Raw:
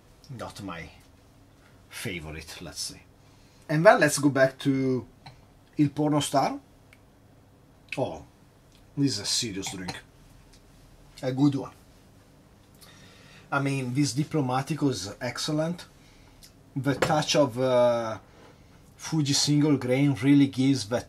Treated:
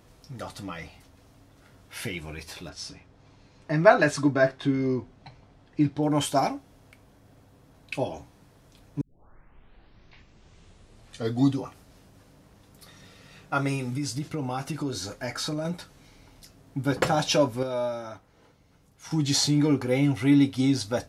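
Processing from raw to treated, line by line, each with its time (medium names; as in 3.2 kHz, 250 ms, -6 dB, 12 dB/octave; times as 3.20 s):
2.69–6.03 s: distance through air 85 m
9.01 s: tape start 2.56 s
13.76–15.65 s: compression 5:1, threshold -26 dBFS
17.63–19.11 s: gain -7.5 dB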